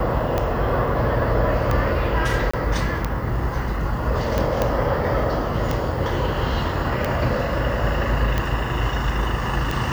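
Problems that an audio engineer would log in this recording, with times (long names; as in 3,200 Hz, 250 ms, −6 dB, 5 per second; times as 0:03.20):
scratch tick 45 rpm −9 dBFS
0:02.51–0:02.54: drop-out 25 ms
0:04.62: click −7 dBFS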